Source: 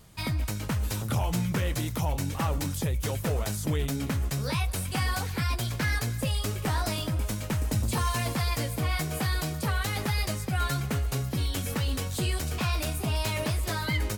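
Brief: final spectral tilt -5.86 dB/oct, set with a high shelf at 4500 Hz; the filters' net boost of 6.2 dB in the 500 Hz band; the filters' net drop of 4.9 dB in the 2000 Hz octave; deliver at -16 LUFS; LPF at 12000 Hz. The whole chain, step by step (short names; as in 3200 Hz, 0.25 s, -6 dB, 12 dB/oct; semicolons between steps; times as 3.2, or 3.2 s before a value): LPF 12000 Hz; bell 500 Hz +8 dB; bell 2000 Hz -6 dB; high shelf 4500 Hz -4 dB; gain +13 dB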